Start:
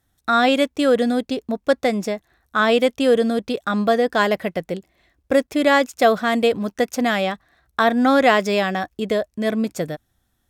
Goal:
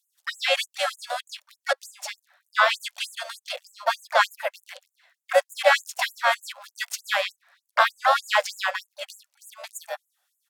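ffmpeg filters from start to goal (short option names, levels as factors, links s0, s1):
-filter_complex "[0:a]asplit=4[s0][s1][s2][s3];[s1]asetrate=22050,aresample=44100,atempo=2,volume=0.178[s4];[s2]asetrate=35002,aresample=44100,atempo=1.25992,volume=0.501[s5];[s3]asetrate=58866,aresample=44100,atempo=0.749154,volume=0.316[s6];[s0][s4][s5][s6]amix=inputs=4:normalize=0,afftfilt=real='re*gte(b*sr/1024,500*pow(6800/500,0.5+0.5*sin(2*PI*3.3*pts/sr)))':imag='im*gte(b*sr/1024,500*pow(6800/500,0.5+0.5*sin(2*PI*3.3*pts/sr)))':win_size=1024:overlap=0.75"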